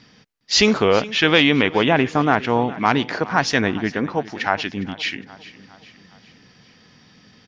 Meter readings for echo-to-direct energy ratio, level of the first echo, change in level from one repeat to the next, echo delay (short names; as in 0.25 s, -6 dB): -16.5 dB, -18.0 dB, -5.5 dB, 0.409 s